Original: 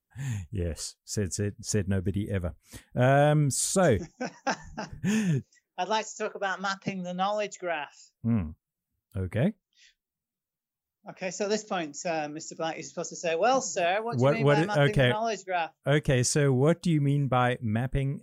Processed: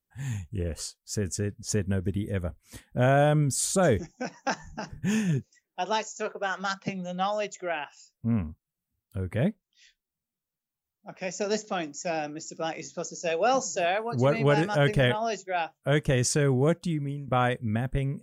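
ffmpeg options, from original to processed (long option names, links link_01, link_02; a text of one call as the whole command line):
ffmpeg -i in.wav -filter_complex "[0:a]asplit=2[link_01][link_02];[link_01]atrim=end=17.28,asetpts=PTS-STARTPTS,afade=type=out:start_time=16.62:duration=0.66:silence=0.199526[link_03];[link_02]atrim=start=17.28,asetpts=PTS-STARTPTS,afade=type=in:duration=0.004:curve=hsin:silence=0.199526[link_04];[link_03][link_04]concat=n=2:v=0:a=1" out.wav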